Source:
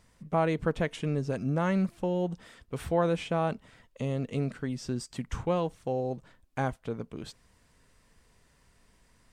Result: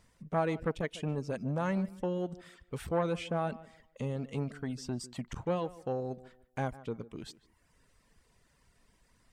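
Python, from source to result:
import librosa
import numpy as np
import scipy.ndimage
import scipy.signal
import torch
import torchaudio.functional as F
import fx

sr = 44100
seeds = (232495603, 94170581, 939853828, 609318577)

y = fx.dereverb_blind(x, sr, rt60_s=0.75)
y = fx.echo_tape(y, sr, ms=149, feedback_pct=29, wet_db=-17.0, lp_hz=2200.0, drive_db=20.0, wow_cents=9)
y = fx.transformer_sat(y, sr, knee_hz=460.0)
y = F.gain(torch.from_numpy(y), -2.0).numpy()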